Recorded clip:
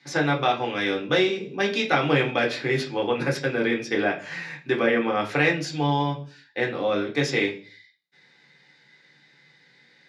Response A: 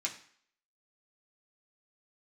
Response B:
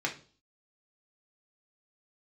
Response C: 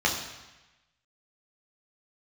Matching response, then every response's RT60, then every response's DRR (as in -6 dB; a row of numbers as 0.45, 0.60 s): B; 0.55, 0.40, 1.1 s; -3.0, -1.0, -2.0 dB